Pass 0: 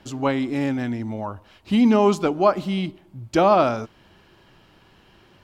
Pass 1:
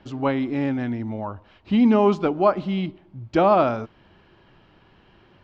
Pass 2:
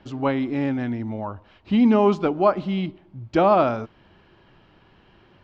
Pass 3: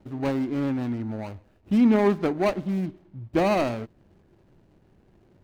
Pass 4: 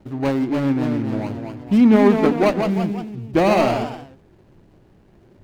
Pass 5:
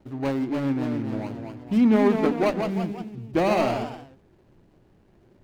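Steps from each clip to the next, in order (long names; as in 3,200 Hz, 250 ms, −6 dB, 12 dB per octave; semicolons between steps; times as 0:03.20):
high-frequency loss of the air 200 metres
no processing that can be heard
running median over 41 samples; level −1.5 dB
delay with pitch and tempo change per echo 304 ms, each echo +1 semitone, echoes 3, each echo −6 dB; level +5.5 dB
mains-hum notches 50/100/150/200 Hz; level −5.5 dB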